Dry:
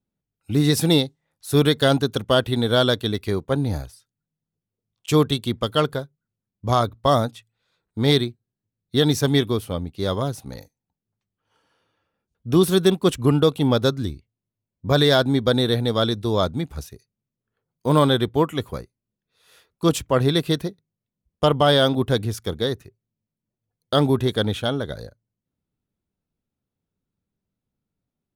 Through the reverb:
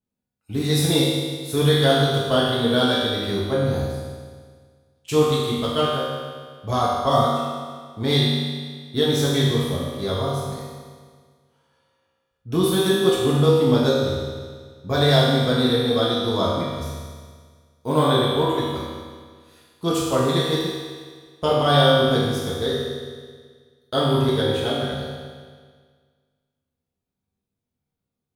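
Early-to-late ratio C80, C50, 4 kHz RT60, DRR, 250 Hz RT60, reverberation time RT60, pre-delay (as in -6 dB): 1.0 dB, -1.5 dB, 1.7 s, -7.0 dB, 1.7 s, 1.7 s, 4 ms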